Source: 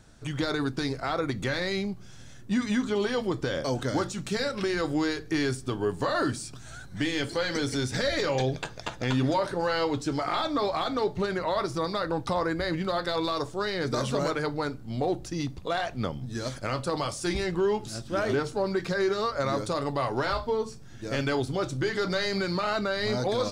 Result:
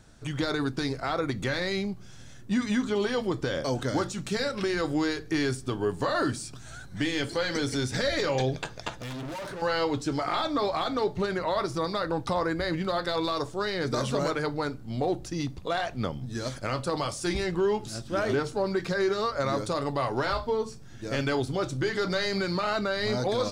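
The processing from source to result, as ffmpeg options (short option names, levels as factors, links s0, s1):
-filter_complex "[0:a]asettb=1/sr,asplit=3[s0][s1][s2];[s0]atrim=end=8.934[s3];[s1]atrim=start=8.93:end=9.62,asetpts=PTS-STARTPTS,afade=t=in:d=0.004:c=qsin,afade=t=out:st=0.686:d=0.004:c=qsin,volume=56.2,asoftclip=hard,volume=0.0178[s4];[s2]atrim=start=9.616[s5];[s3][s4]acrossfade=d=0.004:c1=hsin:c2=qsin[s6];[s6][s5]acrossfade=d=0.004:c1=qsin:c2=hsin"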